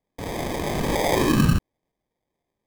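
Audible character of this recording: aliases and images of a low sample rate 1400 Hz, jitter 0%; AAC

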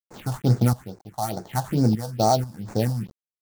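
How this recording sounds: a quantiser's noise floor 8-bit, dither none; random-step tremolo 4.1 Hz, depth 75%; aliases and images of a low sample rate 5100 Hz, jitter 20%; phasing stages 4, 2.3 Hz, lowest notch 360–3100 Hz

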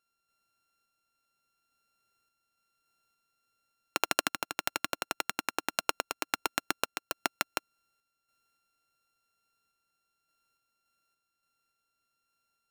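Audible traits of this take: a buzz of ramps at a fixed pitch in blocks of 32 samples; random-step tremolo

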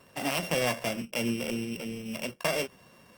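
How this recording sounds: a buzz of ramps at a fixed pitch in blocks of 16 samples; Opus

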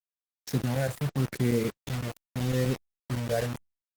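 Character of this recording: phasing stages 6, 0.81 Hz, lowest notch 290–1100 Hz; chopped level 7.9 Hz, depth 65%, duty 90%; a quantiser's noise floor 6-bit, dither none; Opus

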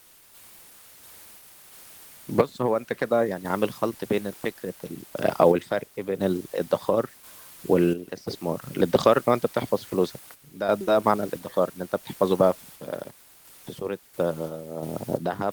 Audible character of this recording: a quantiser's noise floor 8-bit, dither triangular; random-step tremolo 2.9 Hz, depth 70%; Opus

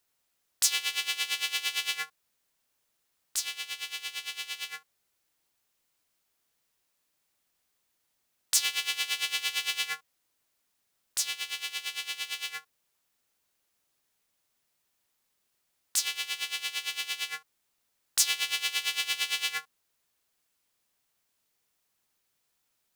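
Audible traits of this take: noise floor -77 dBFS; spectral tilt +3.0 dB/oct

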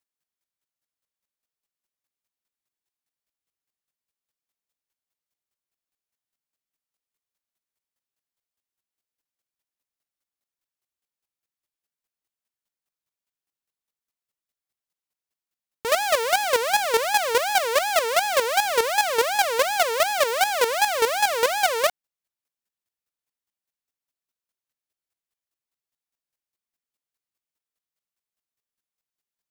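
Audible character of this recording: chopped level 4.9 Hz, depth 65%, duty 15%

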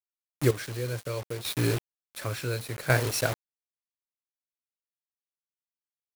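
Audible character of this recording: a quantiser's noise floor 6-bit, dither none; chopped level 0.69 Hz, depth 65%, duty 35%

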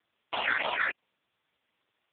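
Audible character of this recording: phasing stages 8, 3.3 Hz, lowest notch 800–1800 Hz; a quantiser's noise floor 12-bit, dither triangular; AMR-NB

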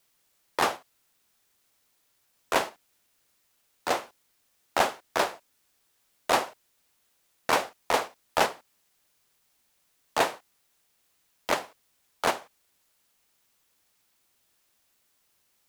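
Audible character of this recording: tremolo saw up 2.6 Hz, depth 35%; a quantiser's noise floor 12-bit, dither triangular

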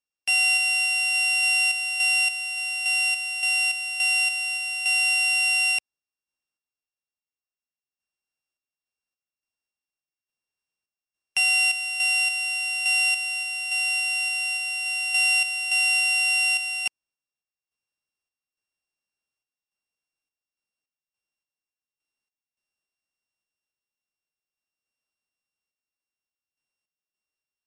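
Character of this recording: a buzz of ramps at a fixed pitch in blocks of 16 samples; random-step tremolo, depth 70%; MP3

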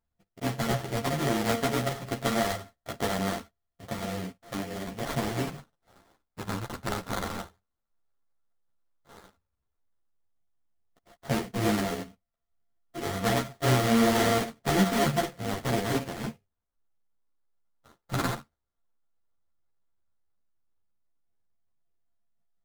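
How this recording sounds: a buzz of ramps at a fixed pitch in blocks of 64 samples; phasing stages 2, 0.093 Hz, lowest notch 410–4200 Hz; aliases and images of a low sample rate 2600 Hz, jitter 20%; a shimmering, thickened sound

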